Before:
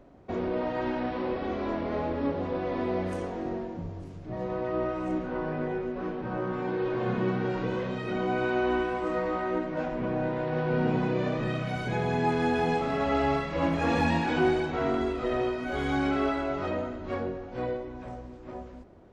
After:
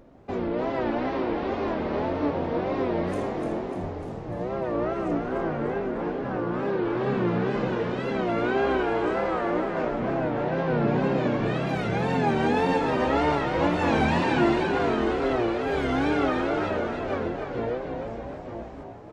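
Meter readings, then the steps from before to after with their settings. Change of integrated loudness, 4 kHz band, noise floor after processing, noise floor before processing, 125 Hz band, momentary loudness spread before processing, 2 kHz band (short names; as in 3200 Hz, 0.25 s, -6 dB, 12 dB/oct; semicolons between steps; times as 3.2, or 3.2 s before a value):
+3.5 dB, +3.5 dB, -37 dBFS, -44 dBFS, +2.5 dB, 9 LU, +3.0 dB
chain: wow and flutter 140 cents; frequency-shifting echo 0.298 s, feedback 59%, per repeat +49 Hz, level -6 dB; gain +2 dB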